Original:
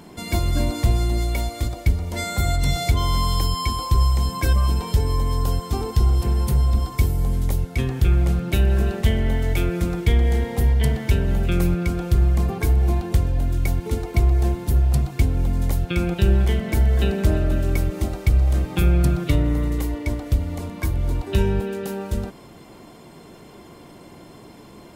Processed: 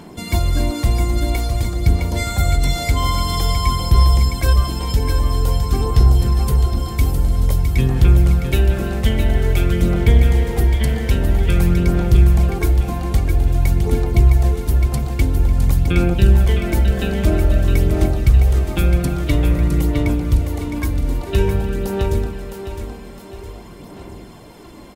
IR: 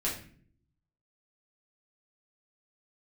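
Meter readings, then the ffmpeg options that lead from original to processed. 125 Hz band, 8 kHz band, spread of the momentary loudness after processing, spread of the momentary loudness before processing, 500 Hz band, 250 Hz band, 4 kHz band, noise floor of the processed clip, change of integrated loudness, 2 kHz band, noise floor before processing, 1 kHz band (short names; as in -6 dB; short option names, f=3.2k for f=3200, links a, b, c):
+4.0 dB, +3.5 dB, 8 LU, 6 LU, +4.0 dB, +4.0 dB, +3.5 dB, -37 dBFS, +4.5 dB, +3.5 dB, -44 dBFS, +3.5 dB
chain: -filter_complex "[0:a]asplit=2[a][b];[b]aecho=0:1:661|1322|1983|2644|3305:0.473|0.208|0.0916|0.0403|0.0177[c];[a][c]amix=inputs=2:normalize=0,aphaser=in_gain=1:out_gain=1:delay=3.9:decay=0.32:speed=0.5:type=sinusoidal,volume=2dB"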